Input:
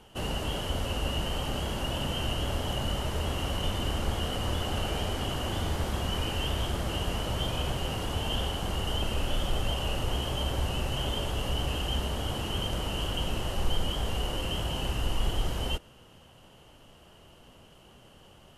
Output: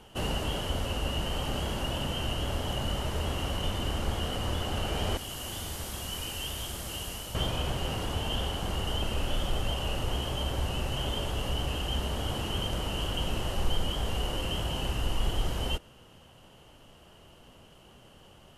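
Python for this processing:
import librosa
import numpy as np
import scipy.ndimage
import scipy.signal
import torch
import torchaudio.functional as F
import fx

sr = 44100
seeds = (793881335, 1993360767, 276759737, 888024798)

y = fx.pre_emphasis(x, sr, coefficient=0.8, at=(5.17, 7.35))
y = fx.rider(y, sr, range_db=5, speed_s=0.5)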